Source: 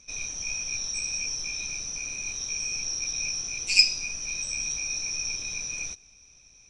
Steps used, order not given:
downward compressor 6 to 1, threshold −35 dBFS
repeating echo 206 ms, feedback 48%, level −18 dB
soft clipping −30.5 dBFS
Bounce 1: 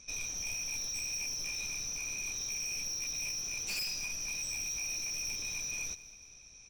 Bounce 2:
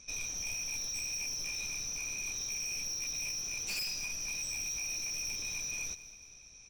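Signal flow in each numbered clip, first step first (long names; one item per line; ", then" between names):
soft clipping, then downward compressor, then repeating echo
soft clipping, then repeating echo, then downward compressor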